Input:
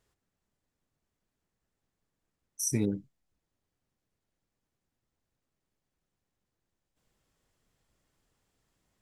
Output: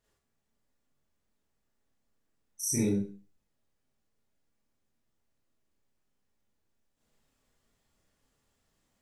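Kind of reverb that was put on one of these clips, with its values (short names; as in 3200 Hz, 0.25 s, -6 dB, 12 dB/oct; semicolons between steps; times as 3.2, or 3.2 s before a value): Schroeder reverb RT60 0.38 s, combs from 27 ms, DRR -6.5 dB; gain -6 dB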